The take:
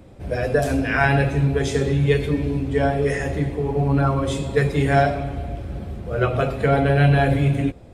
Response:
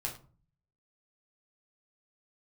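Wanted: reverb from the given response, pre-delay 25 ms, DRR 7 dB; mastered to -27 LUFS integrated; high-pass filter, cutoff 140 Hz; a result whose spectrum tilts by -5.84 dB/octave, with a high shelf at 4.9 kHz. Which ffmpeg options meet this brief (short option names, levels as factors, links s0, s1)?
-filter_complex "[0:a]highpass=140,highshelf=f=4900:g=7,asplit=2[s0][s1];[1:a]atrim=start_sample=2205,adelay=25[s2];[s1][s2]afir=irnorm=-1:irlink=0,volume=0.376[s3];[s0][s3]amix=inputs=2:normalize=0,volume=0.447"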